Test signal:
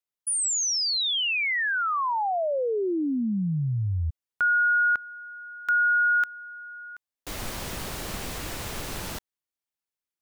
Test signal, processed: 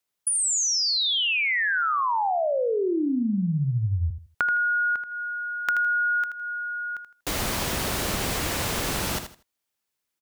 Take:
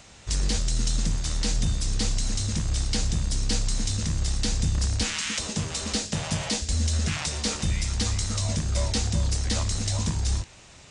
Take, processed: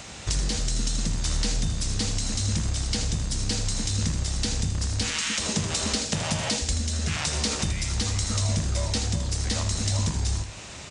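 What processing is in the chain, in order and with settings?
HPF 47 Hz 6 dB/oct; compressor 12:1, threshold -32 dBFS; on a send: feedback echo 80 ms, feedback 23%, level -9 dB; on the sum: gain +9 dB

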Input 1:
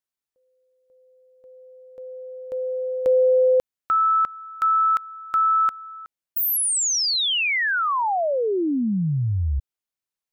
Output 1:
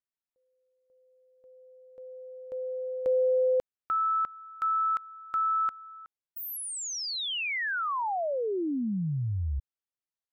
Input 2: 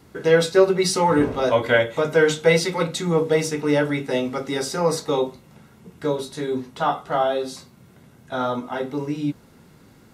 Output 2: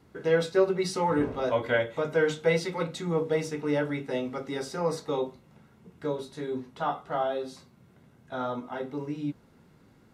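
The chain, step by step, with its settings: high shelf 4400 Hz -8 dB; gain -7.5 dB

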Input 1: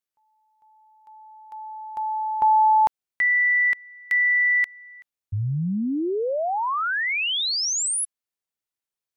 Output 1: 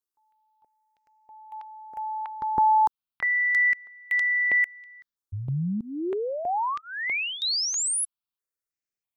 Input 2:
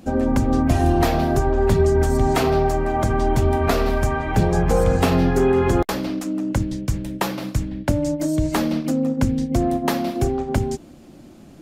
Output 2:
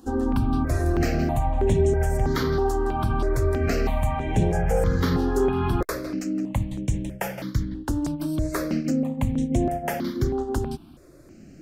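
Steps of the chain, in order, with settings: in parallel at -2 dB: limiter -12.5 dBFS; on the sum: step phaser 3.1 Hz 610–4700 Hz; gain -6 dB

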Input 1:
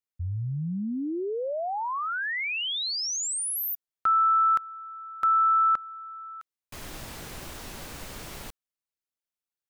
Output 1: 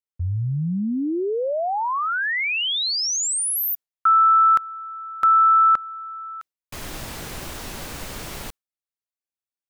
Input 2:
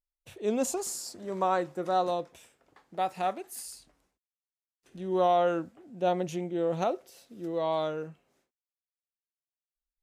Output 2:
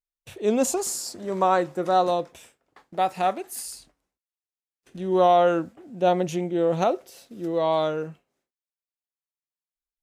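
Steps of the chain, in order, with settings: gate with hold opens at -48 dBFS, closes at -53 dBFS, hold 20 ms, range -13 dB; gain +6.5 dB

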